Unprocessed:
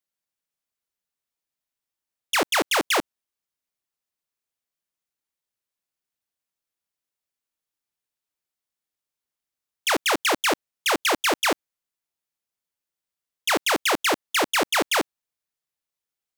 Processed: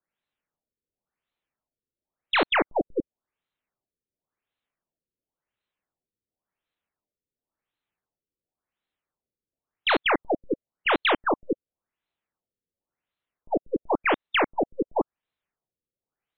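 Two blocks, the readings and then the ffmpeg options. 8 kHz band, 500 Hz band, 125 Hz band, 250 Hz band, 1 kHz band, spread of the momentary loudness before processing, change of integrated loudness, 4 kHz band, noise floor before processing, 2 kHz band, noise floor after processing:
under -40 dB, 0.0 dB, 0.0 dB, +0.5 dB, -2.0 dB, 4 LU, -3.5 dB, -6.0 dB, under -85 dBFS, -3.5 dB, under -85 dBFS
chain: -af "aeval=exprs='0.178*(cos(1*acos(clip(val(0)/0.178,-1,1)))-cos(1*PI/2))+0.00562*(cos(8*acos(clip(val(0)/0.178,-1,1)))-cos(8*PI/2))':c=same,alimiter=limit=0.0944:level=0:latency=1:release=251,afftfilt=real='re*lt(b*sr/1024,520*pow(4300/520,0.5+0.5*sin(2*PI*0.93*pts/sr)))':imag='im*lt(b*sr/1024,520*pow(4300/520,0.5+0.5*sin(2*PI*0.93*pts/sr)))':win_size=1024:overlap=0.75,volume=2"

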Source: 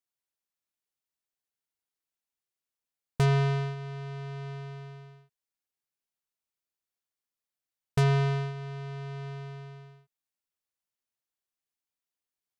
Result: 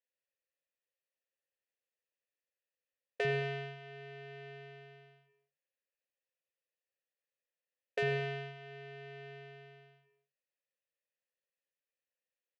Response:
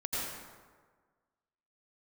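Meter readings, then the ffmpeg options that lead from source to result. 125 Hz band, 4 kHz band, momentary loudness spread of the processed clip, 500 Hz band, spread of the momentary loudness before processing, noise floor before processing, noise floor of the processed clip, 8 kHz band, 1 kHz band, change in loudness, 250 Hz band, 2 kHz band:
-16.5 dB, -5.0 dB, 21 LU, -3.5 dB, 21 LU, under -85 dBFS, under -85 dBFS, under -15 dB, -9.0 dB, -9.0 dB, -15.5 dB, -1.0 dB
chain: -filter_complex "[0:a]asplit=3[s0][s1][s2];[s0]bandpass=f=530:t=q:w=8,volume=1[s3];[s1]bandpass=f=1840:t=q:w=8,volume=0.501[s4];[s2]bandpass=f=2480:t=q:w=8,volume=0.355[s5];[s3][s4][s5]amix=inputs=3:normalize=0,acrossover=split=300[s6][s7];[s6]adelay=50[s8];[s8][s7]amix=inputs=2:normalize=0,asplit=2[s9][s10];[1:a]atrim=start_sample=2205,afade=t=out:st=0.3:d=0.01,atrim=end_sample=13671[s11];[s10][s11]afir=irnorm=-1:irlink=0,volume=0.211[s12];[s9][s12]amix=inputs=2:normalize=0,volume=2.99"

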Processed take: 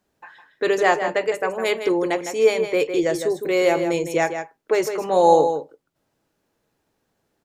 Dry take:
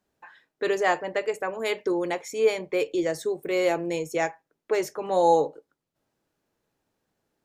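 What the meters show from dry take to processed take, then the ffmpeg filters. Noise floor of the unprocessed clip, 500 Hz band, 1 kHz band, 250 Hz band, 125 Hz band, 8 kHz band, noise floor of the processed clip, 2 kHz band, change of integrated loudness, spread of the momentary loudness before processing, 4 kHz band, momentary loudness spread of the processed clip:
-83 dBFS, +5.5 dB, +5.5 dB, +5.5 dB, +5.5 dB, +5.5 dB, -74 dBFS, +5.5 dB, +5.5 dB, 8 LU, +5.5 dB, 7 LU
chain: -filter_complex "[0:a]asplit=2[s0][s1];[s1]adelay=157.4,volume=0.398,highshelf=f=4000:g=-3.54[s2];[s0][s2]amix=inputs=2:normalize=0,volume=1.78"

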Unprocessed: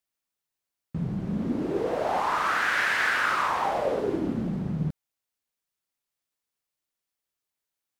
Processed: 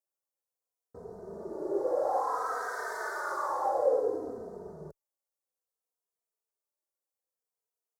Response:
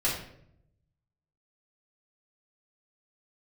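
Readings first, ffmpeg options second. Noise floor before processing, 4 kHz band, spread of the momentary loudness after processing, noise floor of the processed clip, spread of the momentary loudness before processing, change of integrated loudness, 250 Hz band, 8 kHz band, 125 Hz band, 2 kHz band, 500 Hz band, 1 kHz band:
under -85 dBFS, -19.5 dB, 18 LU, under -85 dBFS, 8 LU, -5.0 dB, -14.0 dB, -7.0 dB, -23.0 dB, -14.5 dB, -0.5 dB, -5.0 dB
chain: -filter_complex "[0:a]asuperstop=centerf=2700:order=4:qfactor=0.58,lowshelf=f=310:t=q:w=3:g=-12.5,asplit=2[s0][s1];[s1]adelay=3,afreqshift=-0.59[s2];[s0][s2]amix=inputs=2:normalize=1,volume=0.75"

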